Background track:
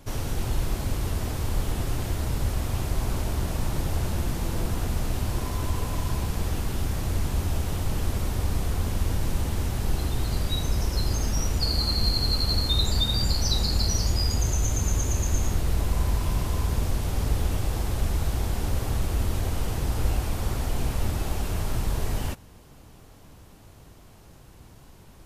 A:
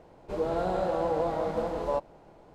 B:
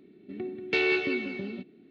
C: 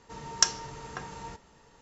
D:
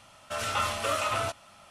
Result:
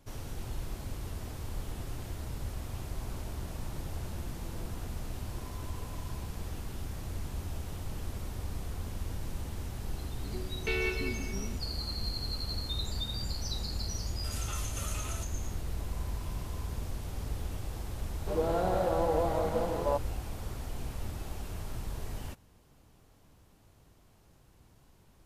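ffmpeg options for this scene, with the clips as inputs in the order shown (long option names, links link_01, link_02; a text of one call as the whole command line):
ffmpeg -i bed.wav -i cue0.wav -i cue1.wav -i cue2.wav -i cue3.wav -filter_complex "[0:a]volume=-11.5dB[link_01];[2:a]aecho=1:1:4.6:0.65[link_02];[4:a]aemphasis=mode=production:type=riaa[link_03];[link_02]atrim=end=1.9,asetpts=PTS-STARTPTS,volume=-8.5dB,afade=type=in:duration=0.004:curve=hsin,afade=type=out:start_time=1.896:duration=0.004:curve=hsin,adelay=438354S[link_04];[link_03]atrim=end=1.7,asetpts=PTS-STARTPTS,volume=-17.5dB,afade=type=in:duration=0.004:curve=hsin,afade=type=out:start_time=1.696:duration=0.004:curve=hsin,adelay=13930[link_05];[1:a]atrim=end=2.54,asetpts=PTS-STARTPTS,volume=-1dB,afade=type=in:duration=0.004:curve=hsin,afade=type=out:start_time=2.536:duration=0.004:curve=hsin,adelay=17980[link_06];[link_01][link_04][link_05][link_06]amix=inputs=4:normalize=0" out.wav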